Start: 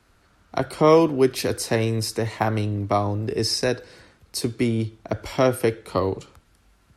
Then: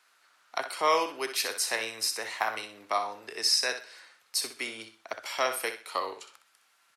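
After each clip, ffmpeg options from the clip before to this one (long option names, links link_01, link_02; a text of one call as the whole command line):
ffmpeg -i in.wav -filter_complex "[0:a]highpass=1100,asplit=2[link_01][link_02];[link_02]aecho=0:1:63|126|189:0.316|0.0885|0.0248[link_03];[link_01][link_03]amix=inputs=2:normalize=0" out.wav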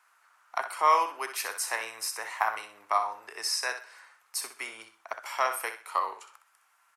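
ffmpeg -i in.wav -af "equalizer=frequency=125:width_type=o:width=1:gain=-11,equalizer=frequency=250:width_type=o:width=1:gain=-10,equalizer=frequency=500:width_type=o:width=1:gain=-5,equalizer=frequency=1000:width_type=o:width=1:gain=7,equalizer=frequency=4000:width_type=o:width=1:gain=-10" out.wav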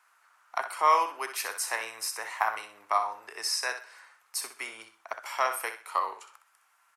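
ffmpeg -i in.wav -af anull out.wav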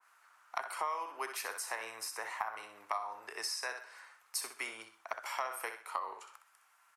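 ffmpeg -i in.wav -af "acompressor=threshold=-31dB:ratio=16,adynamicequalizer=threshold=0.00355:dfrequency=1800:dqfactor=0.7:tfrequency=1800:tqfactor=0.7:attack=5:release=100:ratio=0.375:range=2.5:mode=cutabove:tftype=highshelf,volume=-1dB" out.wav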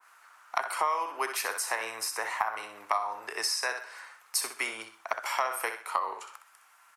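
ffmpeg -i in.wav -af "highpass=79,volume=8dB" out.wav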